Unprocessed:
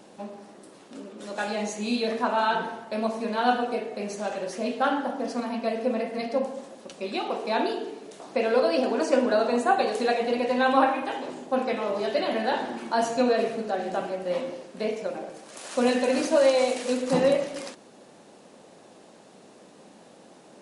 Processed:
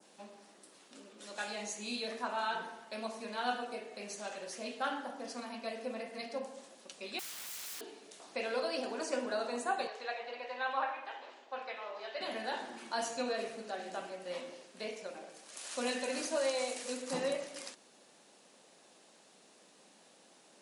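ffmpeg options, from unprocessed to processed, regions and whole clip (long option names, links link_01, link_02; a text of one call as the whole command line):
ffmpeg -i in.wav -filter_complex "[0:a]asettb=1/sr,asplit=3[link_01][link_02][link_03];[link_01]atrim=end=7.194[link_04];[link_02]atrim=start=7.19:end=7.81,asetpts=PTS-STARTPTS,afade=type=in:duration=0.004:curve=qsin,afade=type=out:start_time=0.616:duration=0.004:curve=qsin,highshelf=frequency=2800:gain=8.5,acompressor=threshold=-27dB:ratio=6:attack=3.2:release=140:knee=1:detection=peak,aeval=exprs='(mod(56.2*val(0)+1,2)-1)/56.2':channel_layout=same[link_05];[link_03]atrim=start=7.806[link_06];[link_04][link_05]acrossfade=duration=0.004:curve1=hsin:curve2=qsin[link_07];[link_07][link_06]acrossfade=duration=0.004:curve1=qsin:curve2=hsin,asettb=1/sr,asplit=3[link_08][link_09][link_10];[link_08]atrim=end=9.874[link_11];[link_09]atrim=start=9.87:end=12.21,asetpts=PTS-STARTPTS,afade=type=in:duration=0.004:curve=qsin,afade=type=out:start_time=2.336:duration=0.004:curve=qsin,highpass=630,lowpass=5000,aemphasis=mode=reproduction:type=50fm[link_12];[link_10]atrim=start=12.206[link_13];[link_11][link_12]acrossfade=duration=0.004:curve1=hsin:curve2=qsin[link_14];[link_14][link_13]acrossfade=duration=0.004:curve1=qsin:curve2=hsin,adynamicequalizer=threshold=0.00708:dfrequency=3200:dqfactor=0.89:tfrequency=3200:tqfactor=0.89:attack=5:release=100:ratio=0.375:range=2.5:mode=cutabove:tftype=bell,highpass=140,tiltshelf=frequency=1300:gain=-6.5,volume=-9dB" out.wav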